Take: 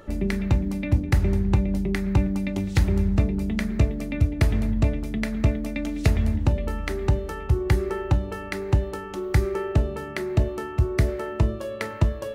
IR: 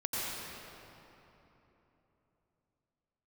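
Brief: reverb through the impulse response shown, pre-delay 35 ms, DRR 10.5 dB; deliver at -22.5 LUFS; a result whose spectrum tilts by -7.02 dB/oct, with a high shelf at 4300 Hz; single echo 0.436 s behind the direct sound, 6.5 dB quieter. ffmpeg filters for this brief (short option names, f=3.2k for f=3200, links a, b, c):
-filter_complex "[0:a]highshelf=f=4.3k:g=6.5,aecho=1:1:436:0.473,asplit=2[a][b];[1:a]atrim=start_sample=2205,adelay=35[c];[b][c]afir=irnorm=-1:irlink=0,volume=-17dB[d];[a][d]amix=inputs=2:normalize=0,volume=1dB"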